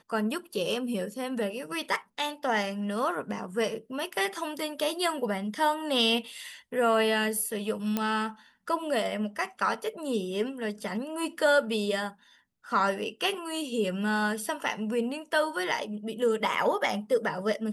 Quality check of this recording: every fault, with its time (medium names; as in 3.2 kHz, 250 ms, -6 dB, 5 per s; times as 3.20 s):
7.97 s: pop -13 dBFS